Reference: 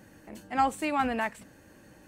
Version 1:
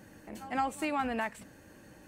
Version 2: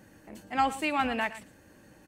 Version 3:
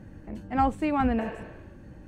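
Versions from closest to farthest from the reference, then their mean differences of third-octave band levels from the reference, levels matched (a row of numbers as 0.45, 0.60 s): 2, 1, 3; 1.5, 3.5, 6.5 dB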